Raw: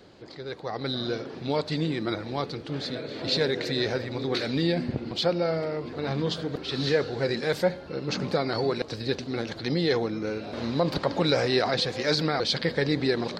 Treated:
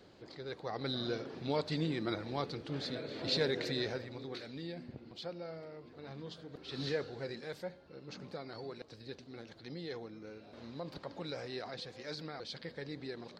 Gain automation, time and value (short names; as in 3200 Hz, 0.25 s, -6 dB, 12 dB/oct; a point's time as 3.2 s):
3.66 s -7 dB
4.51 s -18.5 dB
6.47 s -18.5 dB
6.82 s -10.5 dB
7.64 s -18.5 dB